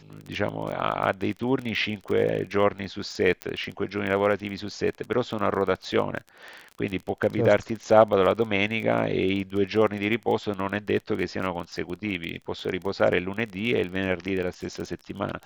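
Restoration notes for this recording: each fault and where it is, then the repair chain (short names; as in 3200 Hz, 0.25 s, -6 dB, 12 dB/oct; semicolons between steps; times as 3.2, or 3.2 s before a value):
crackle 25/s -31 dBFS
3.42 pop -14 dBFS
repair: de-click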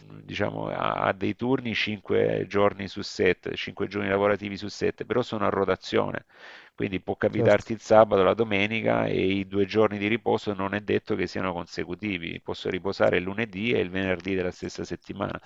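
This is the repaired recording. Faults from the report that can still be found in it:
none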